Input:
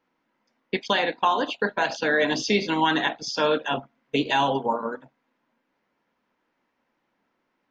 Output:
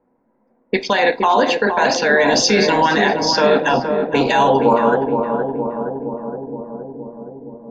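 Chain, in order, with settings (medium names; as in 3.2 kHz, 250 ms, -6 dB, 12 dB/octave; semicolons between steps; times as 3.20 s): in parallel at -1 dB: compressor with a negative ratio -25 dBFS; on the sum: level-controlled noise filter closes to 630 Hz, open at -17.5 dBFS; peak limiter -13.5 dBFS, peak gain reduction 8 dB; graphic EQ with 31 bands 160 Hz -7 dB, 315 Hz -7 dB, 1.25 kHz -5 dB, 3.15 kHz -11 dB; filtered feedback delay 468 ms, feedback 76%, low-pass 930 Hz, level -4 dB; on a send at -14 dB: reverberation RT60 0.50 s, pre-delay 4 ms; on the sum: trim +9 dB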